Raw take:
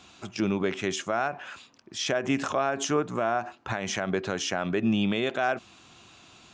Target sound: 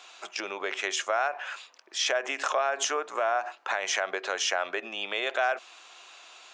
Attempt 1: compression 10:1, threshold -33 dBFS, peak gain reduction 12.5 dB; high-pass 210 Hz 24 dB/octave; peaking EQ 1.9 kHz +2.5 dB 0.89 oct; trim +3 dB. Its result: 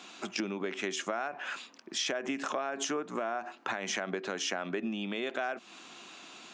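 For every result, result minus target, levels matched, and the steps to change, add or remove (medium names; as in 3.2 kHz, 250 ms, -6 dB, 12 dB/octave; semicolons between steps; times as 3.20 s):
250 Hz band +15.5 dB; compression: peak gain reduction +8.5 dB
change: high-pass 500 Hz 24 dB/octave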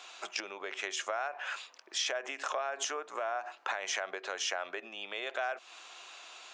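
compression: peak gain reduction +8.5 dB
change: compression 10:1, threshold -23.5 dBFS, peak gain reduction 4 dB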